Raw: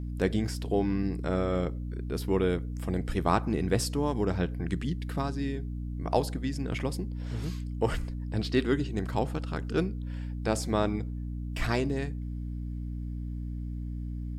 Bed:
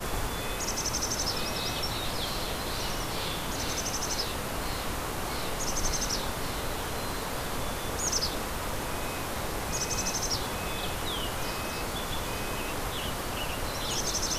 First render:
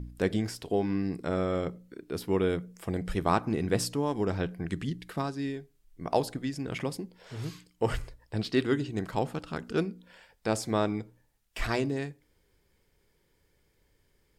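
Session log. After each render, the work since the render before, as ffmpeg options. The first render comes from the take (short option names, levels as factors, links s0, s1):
-af "bandreject=f=60:t=h:w=4,bandreject=f=120:t=h:w=4,bandreject=f=180:t=h:w=4,bandreject=f=240:t=h:w=4,bandreject=f=300:t=h:w=4"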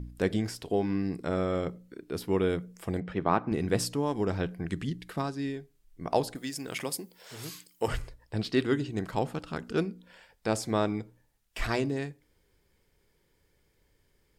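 -filter_complex "[0:a]asettb=1/sr,asplit=3[s0][s1][s2];[s0]atrim=end=3.004[s3];[s1]atrim=start=3:end=3.52,asetpts=PTS-STARTPTS,afade=t=in:d=0.004:c=qsin,afade=t=out:st=0.516:d=0.004:c=qsin,highpass=120,lowpass=2600[s4];[s2]atrim=start=3.516[s5];[s3][s4]acrossfade=d=0.004:c1=hsin:c2=qsin[s6];[s6][s5]acrossfade=d=0.004:c1=qsin:c2=hsin,asettb=1/sr,asplit=3[s7][s8][s9];[s7]atrim=end=6.354[s10];[s8]atrim=start=6.35:end=7.88,asetpts=PTS-STARTPTS,afade=t=in:d=0.004:c=qsin,afade=t=out:st=1.526:d=0.004:c=qsin,aemphasis=mode=production:type=bsi[s11];[s9]atrim=start=7.876[s12];[s10][s11]acrossfade=d=0.004:c1=hsin:c2=qsin[s13];[s13][s12]acrossfade=d=0.004:c1=qsin:c2=hsin"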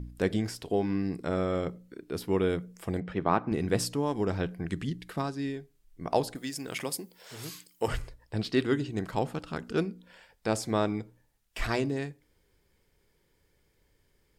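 -af anull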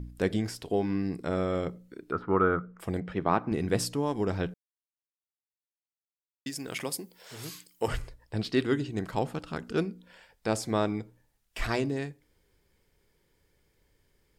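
-filter_complex "[0:a]asettb=1/sr,asplit=3[s0][s1][s2];[s0]atrim=end=2.124[s3];[s1]atrim=start=2.12:end=2.8,asetpts=PTS-STARTPTS,afade=t=in:d=0.004:c=qsin,afade=t=out:st=0.676:d=0.004:c=qsin,lowpass=f=1300:t=q:w=11[s4];[s2]atrim=start=2.796[s5];[s3][s4]acrossfade=d=0.004:c1=hsin:c2=qsin[s6];[s6][s5]acrossfade=d=0.004:c1=qsin:c2=hsin,asplit=3[s7][s8][s9];[s7]atrim=end=4.54,asetpts=PTS-STARTPTS,afade=t=out:st=4.536:d=0.004:c=hsin[s10];[s8]atrim=start=4.54:end=6.46,asetpts=PTS-STARTPTS,volume=0[s11];[s9]atrim=start=6.46,asetpts=PTS-STARTPTS,afade=t=in:d=0.004:c=hsin[s12];[s10][s11][s12]concat=n=3:v=0:a=1"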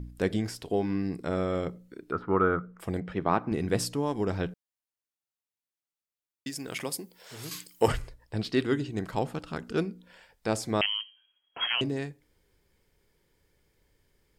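-filter_complex "[0:a]asettb=1/sr,asplit=3[s0][s1][s2];[s0]atrim=end=7.514[s3];[s1]atrim=start=7.51:end=7.92,asetpts=PTS-STARTPTS,afade=t=in:d=0.004:c=qsin,afade=t=out:st=0.406:d=0.004:c=qsin,acontrast=69[s4];[s2]atrim=start=7.916[s5];[s3][s4]acrossfade=d=0.004:c1=hsin:c2=qsin[s6];[s6][s5]acrossfade=d=0.004:c1=qsin:c2=hsin,asettb=1/sr,asplit=3[s7][s8][s9];[s7]atrim=end=10.814[s10];[s8]atrim=start=10.81:end=11.81,asetpts=PTS-STARTPTS,afade=t=in:d=0.004:c=qsin,afade=t=out:st=0.996:d=0.004:c=qsin,lowpass=f=2800:t=q:w=0.5098,lowpass=f=2800:t=q:w=0.6013,lowpass=f=2800:t=q:w=0.9,lowpass=f=2800:t=q:w=2.563,afreqshift=-3300[s11];[s9]atrim=start=11.806[s12];[s10][s11]acrossfade=d=0.004:c1=hsin:c2=qsin[s13];[s13][s12]acrossfade=d=0.004:c1=qsin:c2=hsin"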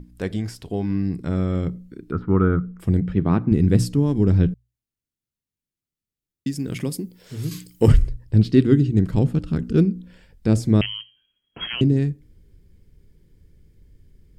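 -af "bandreject=f=60:t=h:w=6,bandreject=f=120:t=h:w=6,asubboost=boost=11:cutoff=240"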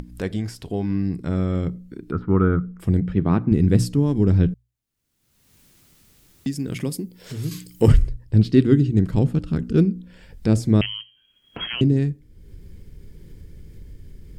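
-af "acompressor=mode=upward:threshold=0.0398:ratio=2.5"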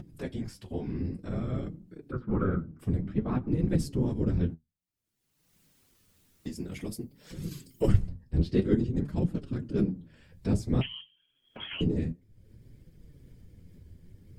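-af "afftfilt=real='hypot(re,im)*cos(2*PI*random(0))':imag='hypot(re,im)*sin(2*PI*random(1))':win_size=512:overlap=0.75,flanger=delay=5.4:depth=7.4:regen=48:speed=0.54:shape=triangular"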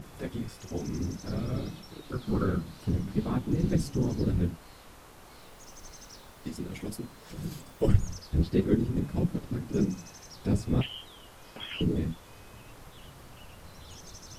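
-filter_complex "[1:a]volume=0.119[s0];[0:a][s0]amix=inputs=2:normalize=0"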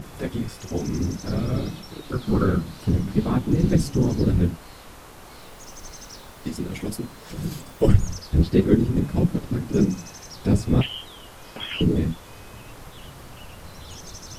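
-af "volume=2.37,alimiter=limit=0.794:level=0:latency=1"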